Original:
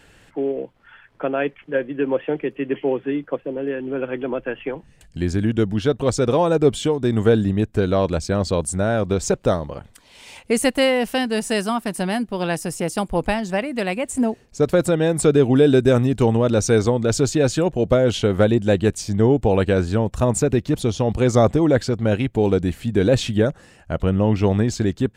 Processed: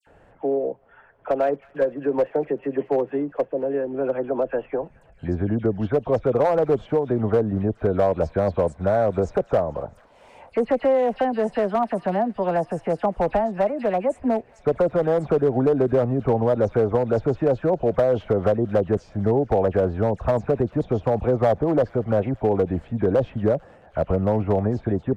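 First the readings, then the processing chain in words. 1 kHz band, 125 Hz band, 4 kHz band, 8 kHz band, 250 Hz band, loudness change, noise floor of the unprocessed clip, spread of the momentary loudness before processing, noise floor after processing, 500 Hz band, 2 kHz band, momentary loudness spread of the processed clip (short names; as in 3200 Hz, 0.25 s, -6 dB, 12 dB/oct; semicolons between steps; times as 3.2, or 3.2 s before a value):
+1.0 dB, -5.0 dB, under -15 dB, under -25 dB, -5.0 dB, -2.5 dB, -52 dBFS, 9 LU, -54 dBFS, -1.0 dB, -8.5 dB, 6 LU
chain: treble ducked by the level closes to 1700 Hz, closed at -12 dBFS; EQ curve 330 Hz 0 dB, 660 Hz +10 dB, 3900 Hz -17 dB; compressor 3:1, threshold -14 dBFS, peak gain reduction 7.5 dB; dispersion lows, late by 71 ms, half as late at 2300 Hz; one-sided clip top -11.5 dBFS, bottom -8 dBFS; on a send: thin delay 0.221 s, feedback 71%, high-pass 1500 Hz, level -20 dB; on the sum: gain -2.5 dB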